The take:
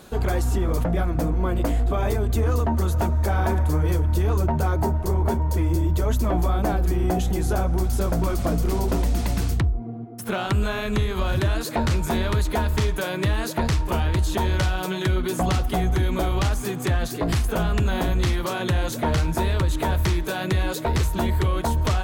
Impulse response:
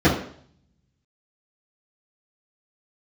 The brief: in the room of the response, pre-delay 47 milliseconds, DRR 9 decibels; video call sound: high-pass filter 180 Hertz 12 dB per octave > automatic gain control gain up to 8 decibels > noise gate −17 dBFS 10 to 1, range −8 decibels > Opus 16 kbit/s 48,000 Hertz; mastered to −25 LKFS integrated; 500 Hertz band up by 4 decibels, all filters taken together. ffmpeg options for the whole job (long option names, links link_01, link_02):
-filter_complex "[0:a]equalizer=frequency=500:width_type=o:gain=5.5,asplit=2[link_01][link_02];[1:a]atrim=start_sample=2205,adelay=47[link_03];[link_02][link_03]afir=irnorm=-1:irlink=0,volume=-30dB[link_04];[link_01][link_04]amix=inputs=2:normalize=0,highpass=180,dynaudnorm=maxgain=8dB,agate=range=-8dB:threshold=-17dB:ratio=10,volume=-2.5dB" -ar 48000 -c:a libopus -b:a 16k